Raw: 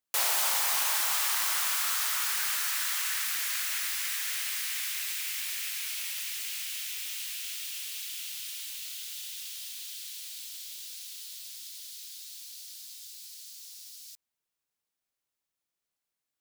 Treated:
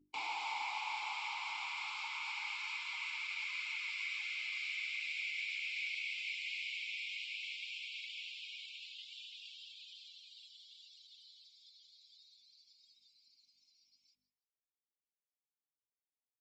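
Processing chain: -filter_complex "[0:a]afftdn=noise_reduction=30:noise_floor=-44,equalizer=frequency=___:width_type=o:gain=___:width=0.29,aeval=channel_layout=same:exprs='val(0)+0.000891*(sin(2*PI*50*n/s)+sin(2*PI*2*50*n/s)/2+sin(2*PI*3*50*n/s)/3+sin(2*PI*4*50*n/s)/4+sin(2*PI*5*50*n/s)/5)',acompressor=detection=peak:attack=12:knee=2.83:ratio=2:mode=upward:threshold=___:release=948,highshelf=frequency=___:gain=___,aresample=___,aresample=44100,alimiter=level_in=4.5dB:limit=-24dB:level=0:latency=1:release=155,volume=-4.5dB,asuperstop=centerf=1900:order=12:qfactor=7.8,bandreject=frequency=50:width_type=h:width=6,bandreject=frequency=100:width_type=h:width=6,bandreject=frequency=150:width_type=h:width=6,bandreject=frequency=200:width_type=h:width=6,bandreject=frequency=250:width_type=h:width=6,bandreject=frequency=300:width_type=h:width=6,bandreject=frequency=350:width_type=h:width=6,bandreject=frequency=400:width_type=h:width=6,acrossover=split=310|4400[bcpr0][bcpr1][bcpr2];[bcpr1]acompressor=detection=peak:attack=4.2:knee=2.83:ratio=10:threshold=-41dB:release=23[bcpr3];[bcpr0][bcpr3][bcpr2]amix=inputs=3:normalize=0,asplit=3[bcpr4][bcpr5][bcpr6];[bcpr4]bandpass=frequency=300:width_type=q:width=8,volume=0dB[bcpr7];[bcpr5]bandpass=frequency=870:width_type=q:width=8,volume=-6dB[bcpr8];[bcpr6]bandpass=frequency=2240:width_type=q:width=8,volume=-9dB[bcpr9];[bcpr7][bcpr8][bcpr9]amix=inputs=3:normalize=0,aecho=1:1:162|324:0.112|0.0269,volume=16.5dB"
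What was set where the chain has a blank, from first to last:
6300, -14.5, -51dB, 2700, 6.5, 16000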